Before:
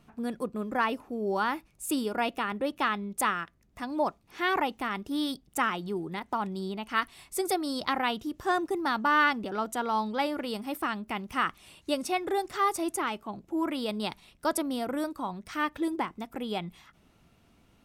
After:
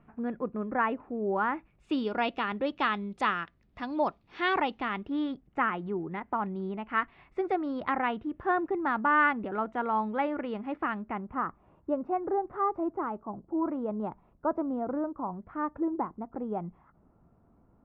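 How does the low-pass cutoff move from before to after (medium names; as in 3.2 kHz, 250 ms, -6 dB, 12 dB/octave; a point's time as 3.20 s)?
low-pass 24 dB/octave
1.54 s 2.1 kHz
2.12 s 4.2 kHz
4.70 s 4.2 kHz
5.33 s 2.2 kHz
10.96 s 2.2 kHz
11.42 s 1.2 kHz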